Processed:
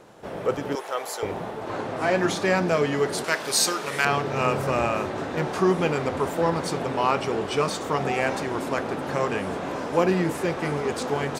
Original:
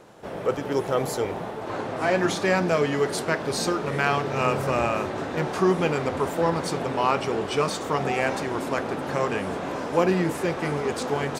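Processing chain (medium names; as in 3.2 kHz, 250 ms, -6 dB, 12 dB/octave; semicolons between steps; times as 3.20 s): 0.75–1.23 s: high-pass 730 Hz 12 dB/octave; 3.24–4.05 s: tilt EQ +3.5 dB/octave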